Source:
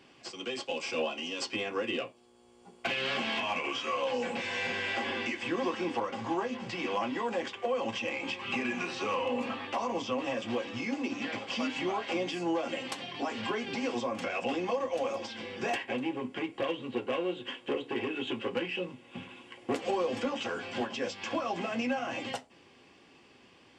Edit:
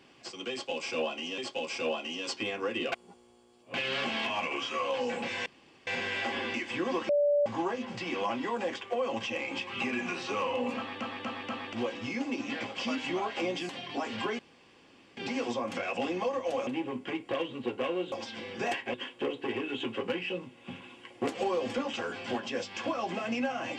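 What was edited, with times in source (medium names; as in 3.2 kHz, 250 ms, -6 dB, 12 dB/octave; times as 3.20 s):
0.51–1.38 s: loop, 2 plays
2.05–2.87 s: reverse
4.59 s: insert room tone 0.41 s
5.81–6.18 s: bleep 581 Hz -22 dBFS
9.49 s: stutter in place 0.24 s, 4 plays
12.41–12.94 s: delete
13.64 s: insert room tone 0.78 s
15.14–15.96 s: move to 17.41 s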